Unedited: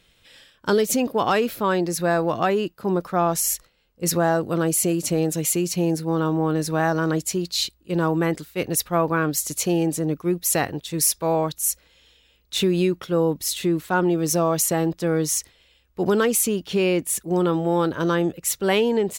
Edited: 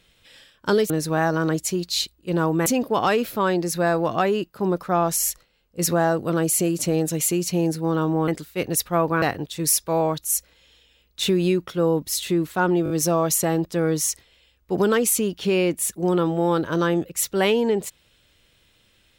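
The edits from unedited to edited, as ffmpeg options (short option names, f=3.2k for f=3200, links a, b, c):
-filter_complex "[0:a]asplit=8[a][b][c][d][e][f][g][h];[a]atrim=end=0.902[i];[b]atrim=start=6.518:end=8.282[j];[c]atrim=start=0.898:end=6.522[k];[d]atrim=start=8.278:end=9.222[l];[e]atrim=start=10.558:end=14.202[m];[f]atrim=start=14.178:end=14.202[n];[g]atrim=start=14.178:end=14.202[o];[h]atrim=start=14.178[p];[i][j]acrossfade=d=0.004:c1=hsin:c2=hsin[q];[q][k]acrossfade=d=0.004:c1=hsin:c2=hsin[r];[r][l]acrossfade=d=0.004:c1=hsin:c2=hsin[s];[s][m]acrossfade=d=0.004:c1=hsin:c2=hsin[t];[t][n]acrossfade=d=0.004:c1=hsin:c2=hsin[u];[u][o]acrossfade=d=0.004:c1=hsin:c2=hsin[v];[v][p]acrossfade=d=0.004:c1=hsin:c2=hsin"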